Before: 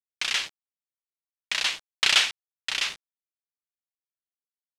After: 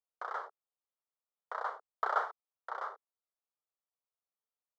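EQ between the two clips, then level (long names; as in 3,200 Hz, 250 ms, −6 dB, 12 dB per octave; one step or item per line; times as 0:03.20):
elliptic band-pass filter 440–1,300 Hz, stop band 40 dB
+4.0 dB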